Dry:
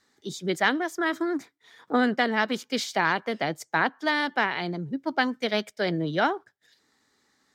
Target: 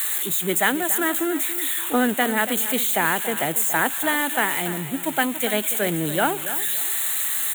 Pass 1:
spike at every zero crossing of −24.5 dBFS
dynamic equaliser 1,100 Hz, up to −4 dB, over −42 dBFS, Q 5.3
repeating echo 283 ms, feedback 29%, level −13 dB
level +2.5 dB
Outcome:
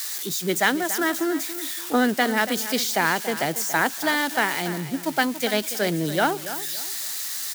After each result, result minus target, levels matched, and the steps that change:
spike at every zero crossing: distortion −7 dB; 4,000 Hz band +3.5 dB
change: spike at every zero crossing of −17 dBFS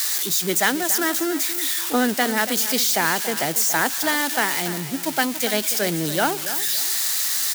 4,000 Hz band +4.5 dB
add after dynamic equaliser: Butterworth band-reject 5,200 Hz, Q 1.3

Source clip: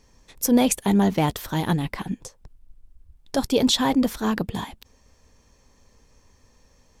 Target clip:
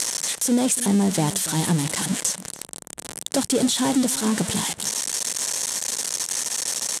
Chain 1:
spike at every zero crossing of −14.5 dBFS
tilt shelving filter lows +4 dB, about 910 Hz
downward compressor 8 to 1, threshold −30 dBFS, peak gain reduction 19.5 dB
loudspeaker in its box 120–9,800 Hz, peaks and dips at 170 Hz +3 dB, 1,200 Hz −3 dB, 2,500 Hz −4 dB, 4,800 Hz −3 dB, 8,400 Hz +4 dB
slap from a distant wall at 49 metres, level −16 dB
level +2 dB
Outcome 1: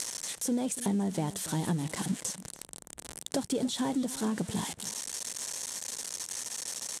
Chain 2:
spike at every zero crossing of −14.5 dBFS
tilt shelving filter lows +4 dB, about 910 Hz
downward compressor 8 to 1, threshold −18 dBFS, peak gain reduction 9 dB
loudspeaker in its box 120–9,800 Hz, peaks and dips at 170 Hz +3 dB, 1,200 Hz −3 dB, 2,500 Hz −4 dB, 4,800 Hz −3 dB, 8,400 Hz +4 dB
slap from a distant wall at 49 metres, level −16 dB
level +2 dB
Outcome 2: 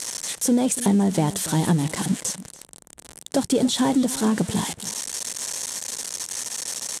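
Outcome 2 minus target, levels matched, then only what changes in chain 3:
spike at every zero crossing: distortion −9 dB
change: spike at every zero crossing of −5.5 dBFS

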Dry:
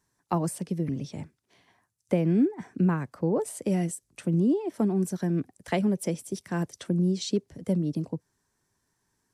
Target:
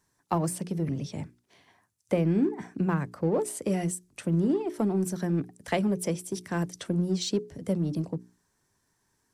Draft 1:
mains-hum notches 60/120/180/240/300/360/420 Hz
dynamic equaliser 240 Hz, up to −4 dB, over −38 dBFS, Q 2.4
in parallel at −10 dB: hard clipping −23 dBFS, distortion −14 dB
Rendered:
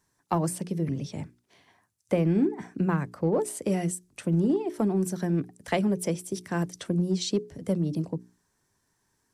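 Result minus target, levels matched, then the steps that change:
hard clipping: distortion −9 dB
change: hard clipping −32 dBFS, distortion −6 dB

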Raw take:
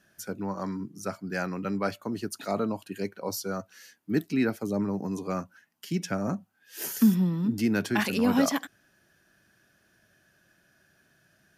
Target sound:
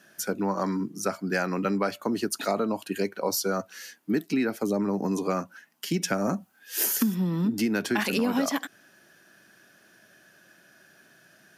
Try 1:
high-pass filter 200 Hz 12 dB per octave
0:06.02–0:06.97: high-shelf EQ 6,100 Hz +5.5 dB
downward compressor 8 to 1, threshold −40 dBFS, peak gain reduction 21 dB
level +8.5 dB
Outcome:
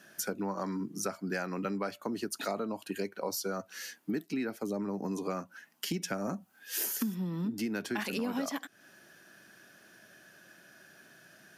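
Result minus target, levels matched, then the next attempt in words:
downward compressor: peak gain reduction +8.5 dB
high-pass filter 200 Hz 12 dB per octave
0:06.02–0:06.97: high-shelf EQ 6,100 Hz +5.5 dB
downward compressor 8 to 1, threshold −30.5 dBFS, peak gain reduction 13 dB
level +8.5 dB

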